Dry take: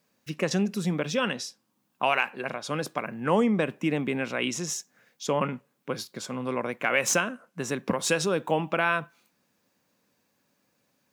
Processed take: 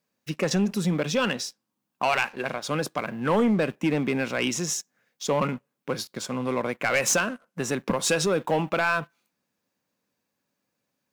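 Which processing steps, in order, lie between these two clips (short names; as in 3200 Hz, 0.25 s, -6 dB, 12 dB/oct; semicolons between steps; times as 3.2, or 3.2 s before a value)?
sample leveller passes 2; gain -4 dB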